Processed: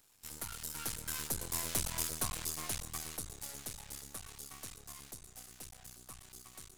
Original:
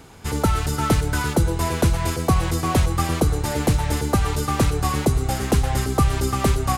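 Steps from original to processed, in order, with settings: Doppler pass-by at 1.87 s, 18 m/s, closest 11 m; half-wave rectifier; pre-emphasis filter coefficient 0.9; trim +1 dB

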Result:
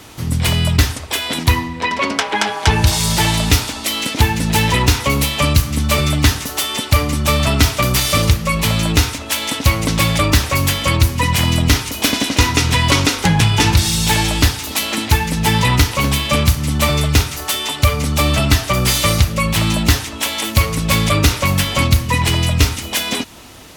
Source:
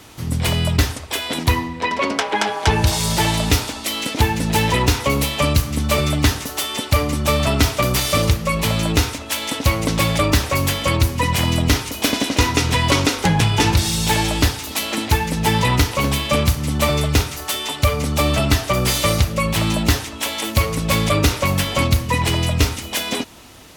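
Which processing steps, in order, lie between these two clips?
dynamic bell 500 Hz, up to -5 dB, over -32 dBFS, Q 0.74; trim +4 dB

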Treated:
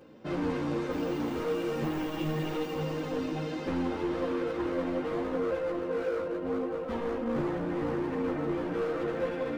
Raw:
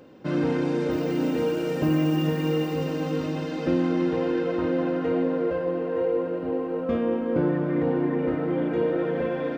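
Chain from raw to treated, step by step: overload inside the chain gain 25.5 dB; three-phase chorus

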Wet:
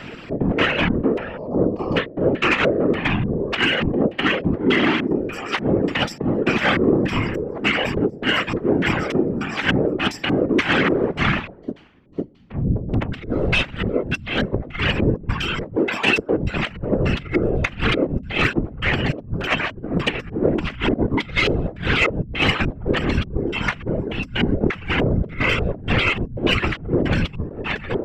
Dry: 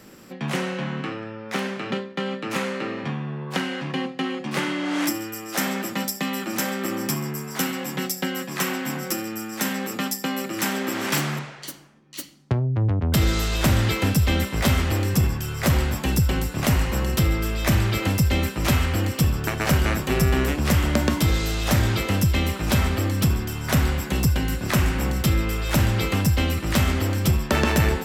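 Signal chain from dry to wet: 1.37–1.97 s: time-frequency box 1.2–4.2 kHz -28 dB; 15.76–16.37 s: high-pass 280 Hz 24 dB/octave; reverb removal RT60 1.1 s; dynamic bell 1.6 kHz, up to +4 dB, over -39 dBFS, Q 0.89; compressor with a negative ratio -28 dBFS, ratio -0.5; LFO low-pass square 1.7 Hz 440–2800 Hz; 19.01–19.94 s: comb of notches 430 Hz; saturation -15 dBFS, distortion -22 dB; whisper effect; trim +7.5 dB

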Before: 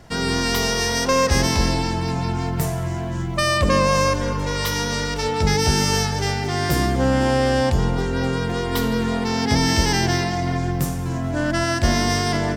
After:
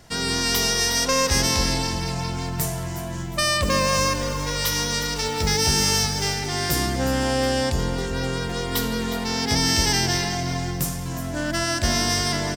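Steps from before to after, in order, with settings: 3.62–6.34 s: short-mantissa float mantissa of 4-bit; treble shelf 2.9 kHz +10 dB; feedback delay 361 ms, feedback 40%, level -13 dB; trim -5 dB

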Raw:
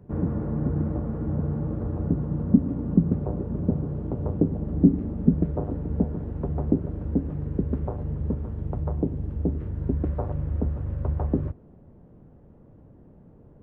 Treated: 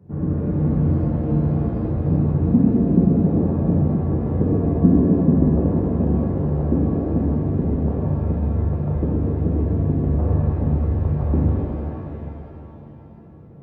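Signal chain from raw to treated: high-pass 81 Hz; bass shelf 300 Hz +8.5 dB; pitch-shifted reverb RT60 2.9 s, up +7 st, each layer -8 dB, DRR -6 dB; trim -5.5 dB

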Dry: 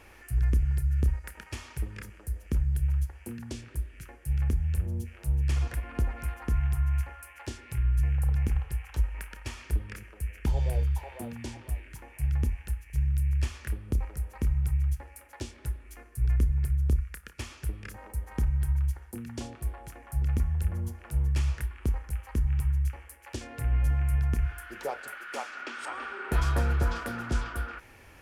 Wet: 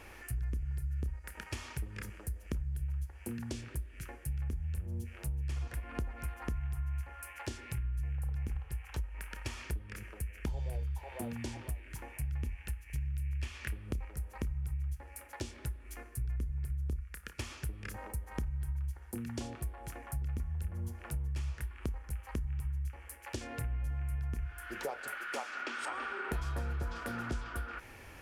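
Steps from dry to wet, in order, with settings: 12.35–14.13 s: dynamic bell 2.5 kHz, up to +7 dB, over -58 dBFS, Q 1.1; compression 4:1, threshold -37 dBFS, peak gain reduction 14.5 dB; trim +1.5 dB

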